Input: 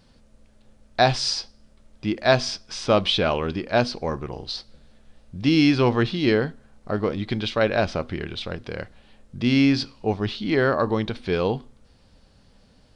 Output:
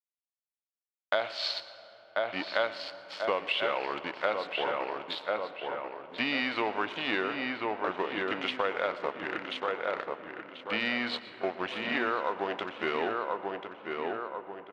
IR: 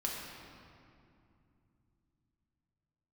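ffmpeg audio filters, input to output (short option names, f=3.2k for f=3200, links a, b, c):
-filter_complex "[0:a]aeval=exprs='sgn(val(0))*max(abs(val(0))-0.02,0)':c=same,agate=range=-33dB:threshold=-41dB:ratio=3:detection=peak,highpass=710,lowpass=3.3k,asetrate=38808,aresample=44100,asplit=2[a][b];[b]adelay=1038,lowpass=f=2.4k:p=1,volume=-7dB,asplit=2[c][d];[d]adelay=1038,lowpass=f=2.4k:p=1,volume=0.41,asplit=2[e][f];[f]adelay=1038,lowpass=f=2.4k:p=1,volume=0.41,asplit=2[g][h];[h]adelay=1038,lowpass=f=2.4k:p=1,volume=0.41,asplit=2[i][j];[j]adelay=1038,lowpass=f=2.4k:p=1,volume=0.41[k];[a][c][e][g][i][k]amix=inputs=6:normalize=0,acompressor=threshold=-31dB:ratio=5,asplit=2[l][m];[1:a]atrim=start_sample=2205,asetrate=26019,aresample=44100,adelay=116[n];[m][n]afir=irnorm=-1:irlink=0,volume=-20dB[o];[l][o]amix=inputs=2:normalize=0,volume=4.5dB"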